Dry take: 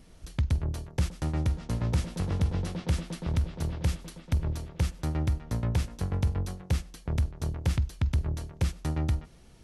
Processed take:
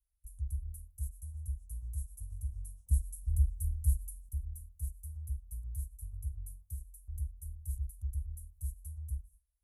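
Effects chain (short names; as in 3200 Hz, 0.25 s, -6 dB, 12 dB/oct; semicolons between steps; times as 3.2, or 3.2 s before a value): HPF 100 Hz 6 dB/oct; gate with hold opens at -44 dBFS; inverse Chebyshev band-stop 150–4700 Hz, stop band 50 dB; 2.91–4.29 tone controls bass +10 dB, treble +6 dB; 6.28–6.81 compressor 4:1, threshold -40 dBFS, peak gain reduction 5 dB; gain +3.5 dB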